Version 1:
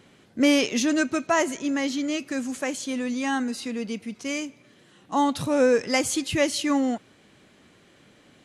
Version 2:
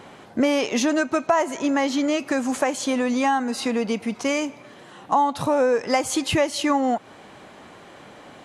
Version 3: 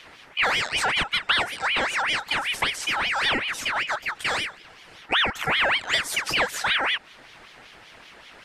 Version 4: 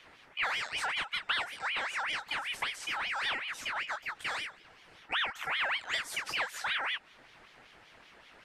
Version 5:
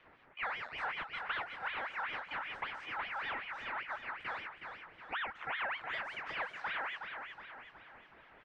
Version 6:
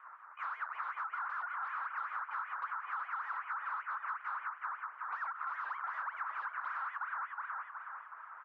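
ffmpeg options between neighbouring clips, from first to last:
ffmpeg -i in.wav -af "equalizer=frequency=850:width=0.92:gain=13,acompressor=threshold=-26dB:ratio=4,volume=6.5dB" out.wav
ffmpeg -i in.wav -af "aeval=exprs='val(0)*sin(2*PI*1900*n/s+1900*0.45/5.2*sin(2*PI*5.2*n/s))':channel_layout=same" out.wav
ffmpeg -i in.wav -filter_complex "[0:a]acrossover=split=700|2800[link_01][link_02][link_03];[link_01]acompressor=threshold=-43dB:ratio=6[link_04];[link_03]flanger=delay=15.5:depth=5:speed=0.87[link_05];[link_04][link_02][link_05]amix=inputs=3:normalize=0,volume=-8.5dB" out.wav
ffmpeg -i in.wav -filter_complex "[0:a]lowpass=1800,asplit=2[link_01][link_02];[link_02]aecho=0:1:368|736|1104|1472|1840|2208:0.473|0.227|0.109|0.0523|0.0251|0.0121[link_03];[link_01][link_03]amix=inputs=2:normalize=0,volume=-3dB" out.wav
ffmpeg -i in.wav -af "aeval=exprs='0.0126*(abs(mod(val(0)/0.0126+3,4)-2)-1)':channel_layout=same,asuperpass=centerf=1200:order=4:qfactor=2.7,acompressor=threshold=-52dB:ratio=6,volume=16dB" out.wav

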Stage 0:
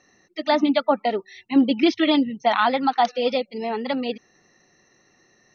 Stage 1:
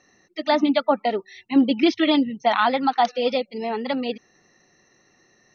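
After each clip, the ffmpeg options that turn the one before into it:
ffmpeg -i in.wav -af anull out.wav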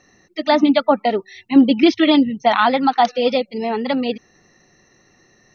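ffmpeg -i in.wav -af "lowshelf=frequency=140:gain=8.5,volume=4dB" out.wav

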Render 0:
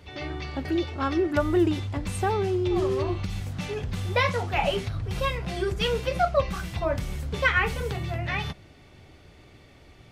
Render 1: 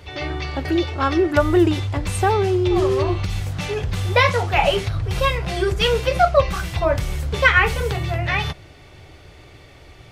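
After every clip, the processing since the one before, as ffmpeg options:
ffmpeg -i in.wav -af "equalizer=frequency=220:width_type=o:width=0.59:gain=-10,volume=8dB" out.wav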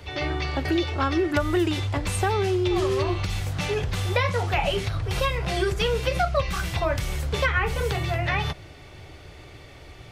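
ffmpeg -i in.wav -filter_complex "[0:a]acrossover=split=340|1300[link_01][link_02][link_03];[link_01]acompressor=threshold=-25dB:ratio=4[link_04];[link_02]acompressor=threshold=-27dB:ratio=4[link_05];[link_03]acompressor=threshold=-28dB:ratio=4[link_06];[link_04][link_05][link_06]amix=inputs=3:normalize=0" out.wav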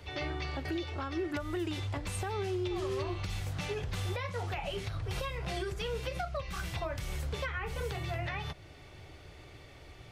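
ffmpeg -i in.wav -af "alimiter=limit=-19dB:level=0:latency=1:release=356,volume=-7dB" out.wav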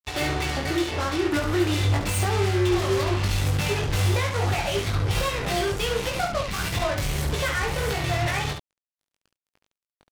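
ffmpeg -i in.wav -filter_complex "[0:a]acrusher=bits=5:mix=0:aa=0.5,asplit=2[link_01][link_02];[link_02]aecho=0:1:20|70:0.631|0.501[link_03];[link_01][link_03]amix=inputs=2:normalize=0,volume=8.5dB" out.wav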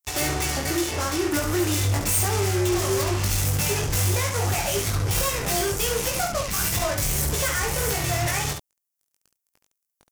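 ffmpeg -i in.wav -af "aexciter=amount=4.9:drive=2.5:freq=5400,asoftclip=type=hard:threshold=-18dB" out.wav

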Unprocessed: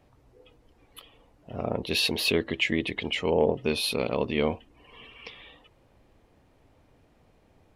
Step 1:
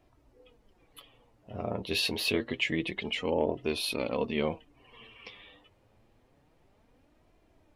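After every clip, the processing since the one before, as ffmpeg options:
ffmpeg -i in.wav -af "flanger=delay=2.9:depth=7.2:regen=39:speed=0.27:shape=sinusoidal" out.wav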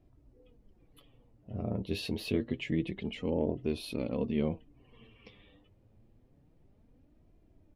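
ffmpeg -i in.wav -af "firequalizer=gain_entry='entry(180,0);entry(420,-7);entry(920,-15)':delay=0.05:min_phase=1,volume=4dB" out.wav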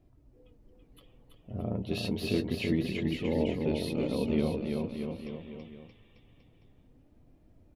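ffmpeg -i in.wav -af "aecho=1:1:330|627|894.3|1135|1351:0.631|0.398|0.251|0.158|0.1,volume=1dB" out.wav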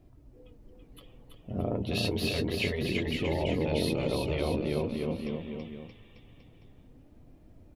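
ffmpeg -i in.wav -af "afftfilt=real='re*lt(hypot(re,im),0.178)':imag='im*lt(hypot(re,im),0.178)':win_size=1024:overlap=0.75,volume=5.5dB" out.wav

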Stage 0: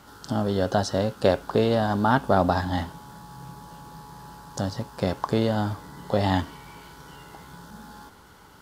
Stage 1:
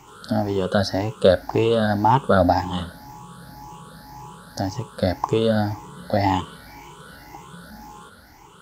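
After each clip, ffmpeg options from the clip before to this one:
ffmpeg -i in.wav -af "afftfilt=real='re*pow(10,16/40*sin(2*PI*(0.71*log(max(b,1)*sr/1024/100)/log(2)-(1.9)*(pts-256)/sr)))':imag='im*pow(10,16/40*sin(2*PI*(0.71*log(max(b,1)*sr/1024/100)/log(2)-(1.9)*(pts-256)/sr)))':win_size=1024:overlap=0.75" out.wav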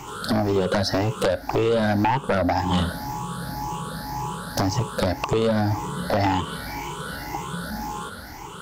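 ffmpeg -i in.wav -af "acompressor=threshold=-24dB:ratio=12,aeval=exprs='0.251*sin(PI/2*3.16*val(0)/0.251)':channel_layout=same,volume=-3.5dB" out.wav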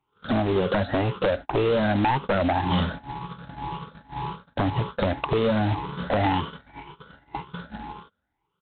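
ffmpeg -i in.wav -af "agate=range=-39dB:threshold=-29dB:ratio=16:detection=peak,aresample=8000,acrusher=bits=3:mode=log:mix=0:aa=0.000001,aresample=44100,volume=-1.5dB" out.wav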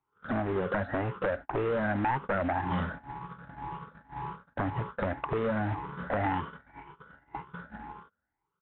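ffmpeg -i in.wav -af "lowpass=frequency=1700:width_type=q:width=1.8,volume=-8dB" out.wav

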